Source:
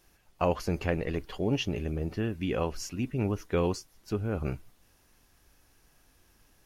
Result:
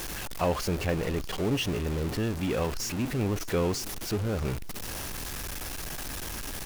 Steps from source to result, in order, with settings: jump at every zero crossing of -28 dBFS; delay 620 ms -21 dB; trim -2 dB

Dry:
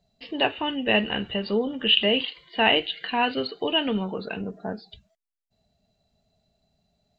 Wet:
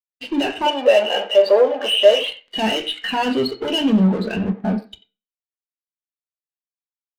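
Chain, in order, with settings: in parallel at +1 dB: compression, threshold -34 dBFS, peak gain reduction 18 dB; on the sum: fuzz box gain 33 dB, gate -39 dBFS; 0.66–2.28 s: resonant high-pass 560 Hz, resonance Q 3.6; speakerphone echo 90 ms, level -11 dB; on a send at -5 dB: reverberation RT60 0.50 s, pre-delay 3 ms; on the sum: spectral contrast expander 1.5:1; trim -2 dB

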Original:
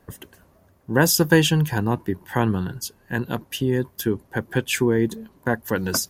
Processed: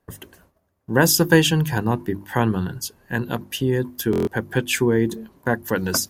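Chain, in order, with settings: hum notches 50/100/150/200/250/300/350 Hz; gate -54 dBFS, range -14 dB; buffer glitch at 4.11 s, samples 1024, times 6; trim +1.5 dB

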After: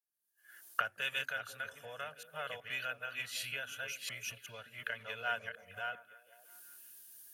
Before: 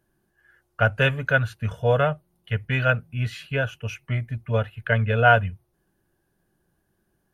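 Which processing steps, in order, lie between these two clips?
chunks repeated in reverse 372 ms, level -3.5 dB; recorder AGC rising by 46 dB/s; differentiator; repeats whose band climbs or falls 169 ms, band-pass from 230 Hz, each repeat 0.7 oct, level -6 dB; three bands expanded up and down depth 40%; trim -6 dB

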